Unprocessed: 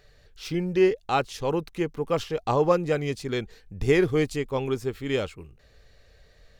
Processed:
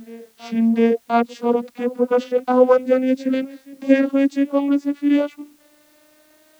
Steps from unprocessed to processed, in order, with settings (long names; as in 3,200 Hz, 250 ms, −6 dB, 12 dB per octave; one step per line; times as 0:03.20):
vocoder with a gliding carrier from A3, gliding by +6 semitones
background noise white −67 dBFS
backwards echo 704 ms −22 dB
level +8 dB